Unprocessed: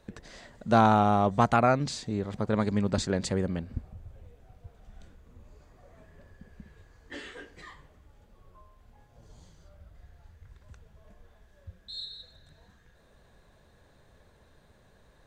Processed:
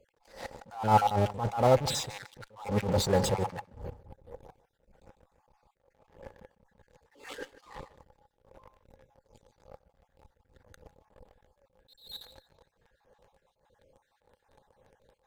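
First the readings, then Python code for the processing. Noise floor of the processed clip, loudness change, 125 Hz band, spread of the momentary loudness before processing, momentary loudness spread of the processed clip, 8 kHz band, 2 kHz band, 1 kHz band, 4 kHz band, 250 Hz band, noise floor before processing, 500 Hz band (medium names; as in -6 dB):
-77 dBFS, -2.0 dB, -2.0 dB, 22 LU, 21 LU, +3.0 dB, -5.5 dB, -3.0 dB, +1.0 dB, -7.5 dB, -61 dBFS, -0.5 dB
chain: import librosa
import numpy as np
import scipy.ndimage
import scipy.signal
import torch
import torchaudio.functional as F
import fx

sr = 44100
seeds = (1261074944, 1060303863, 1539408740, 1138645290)

p1 = fx.spec_dropout(x, sr, seeds[0], share_pct=39)
p2 = fx.dynamic_eq(p1, sr, hz=110.0, q=1.6, threshold_db=-47.0, ratio=4.0, max_db=7)
p3 = fx.fuzz(p2, sr, gain_db=46.0, gate_db=-52.0)
p4 = p2 + (p3 * 10.0 ** (-11.0 / 20.0))
p5 = fx.small_body(p4, sr, hz=(520.0, 830.0), ring_ms=35, db=14)
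p6 = p5 + fx.echo_feedback(p5, sr, ms=151, feedback_pct=23, wet_db=-20.0, dry=0)
p7 = fx.attack_slew(p6, sr, db_per_s=130.0)
y = p7 * 10.0 ** (-7.0 / 20.0)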